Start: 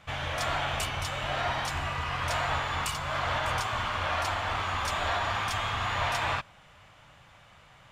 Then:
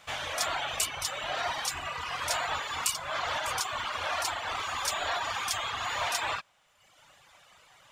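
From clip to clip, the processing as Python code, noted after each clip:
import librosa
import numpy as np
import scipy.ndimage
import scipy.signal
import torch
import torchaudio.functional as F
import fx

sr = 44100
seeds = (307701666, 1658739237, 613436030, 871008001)

y = fx.dereverb_blind(x, sr, rt60_s=1.1)
y = fx.bass_treble(y, sr, bass_db=-12, treble_db=9)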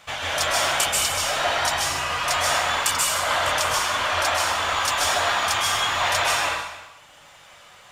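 y = x + 10.0 ** (-19.5 / 20.0) * np.pad(x, (int(304 * sr / 1000.0), 0))[:len(x)]
y = fx.rev_plate(y, sr, seeds[0], rt60_s=0.89, hf_ratio=1.0, predelay_ms=120, drr_db=-3.5)
y = y * librosa.db_to_amplitude(5.0)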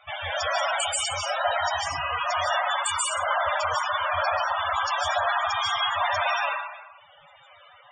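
y = fx.spec_topn(x, sr, count=32)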